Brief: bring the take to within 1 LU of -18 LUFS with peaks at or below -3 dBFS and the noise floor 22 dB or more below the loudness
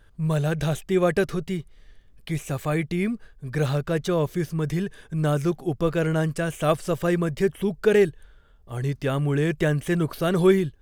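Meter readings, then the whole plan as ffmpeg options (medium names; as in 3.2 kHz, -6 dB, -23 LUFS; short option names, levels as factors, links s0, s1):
loudness -24.5 LUFS; peak level -7.5 dBFS; loudness target -18.0 LUFS
-> -af "volume=2.11,alimiter=limit=0.708:level=0:latency=1"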